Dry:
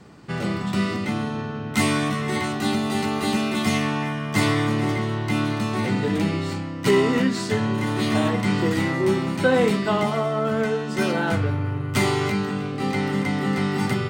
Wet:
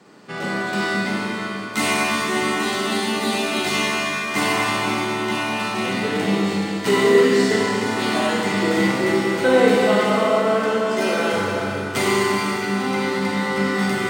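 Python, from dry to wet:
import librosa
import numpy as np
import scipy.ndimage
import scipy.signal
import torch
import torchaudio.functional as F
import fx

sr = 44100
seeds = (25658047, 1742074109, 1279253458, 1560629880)

y = scipy.signal.sosfilt(scipy.signal.butter(2, 260.0, 'highpass', fs=sr, output='sos'), x)
y = fx.rev_schroeder(y, sr, rt60_s=3.2, comb_ms=31, drr_db=-4.0)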